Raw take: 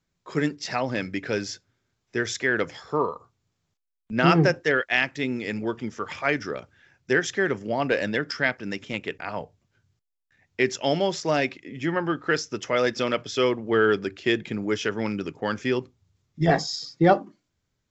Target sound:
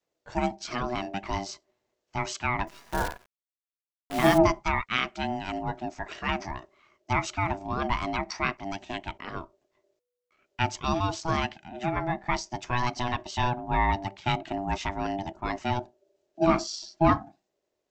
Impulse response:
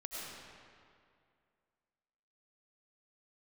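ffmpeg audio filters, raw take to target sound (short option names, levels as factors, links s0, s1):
-filter_complex "[0:a]adynamicequalizer=threshold=0.00794:dfrequency=140:dqfactor=1.3:tfrequency=140:tqfactor=1.3:attack=5:release=100:ratio=0.375:range=3.5:mode=boostabove:tftype=bell,aeval=exprs='val(0)*sin(2*PI*490*n/s)':c=same,asettb=1/sr,asplit=3[s0][s1][s2];[s0]atrim=end=2.674[s3];[s1]atrim=start=2.67:end=4.38,asetpts=PTS-STARTPTS,afade=t=in:d=0.004:c=qsin,afade=t=out:st=1.706:d=0.004:c=qsin,acrusher=bits=6:dc=4:mix=0:aa=0.000001[s4];[s2]atrim=start=4.376[s5];[s3][s4]acrossfade=d=0.004:c1=hsin:c2=qsin[s6];[s6][s5]acrossfade=d=0.004:c1=qsin:c2=hsin,volume=0.794"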